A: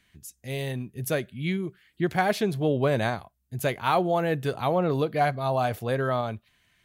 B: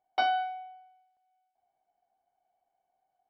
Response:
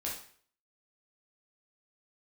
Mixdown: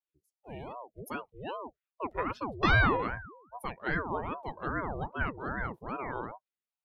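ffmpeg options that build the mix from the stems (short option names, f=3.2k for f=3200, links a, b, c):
-filter_complex "[0:a]adynamicequalizer=threshold=0.01:dfrequency=860:dqfactor=2.5:tfrequency=860:tqfactor=2.5:attack=5:release=100:ratio=0.375:range=2.5:mode=boostabove:tftype=bell,volume=-8dB[a];[1:a]dynaudnorm=f=190:g=3:m=11dB,adelay=2450,volume=0.5dB[b];[a][b]amix=inputs=2:normalize=0,afftdn=nr=27:nf=-39,bandreject=f=640:w=18,aeval=exprs='val(0)*sin(2*PI*540*n/s+540*0.6/2.5*sin(2*PI*2.5*n/s))':c=same"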